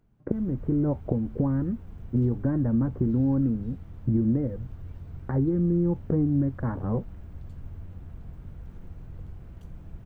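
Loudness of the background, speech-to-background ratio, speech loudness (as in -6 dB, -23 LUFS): -44.0 LUFS, 17.0 dB, -27.0 LUFS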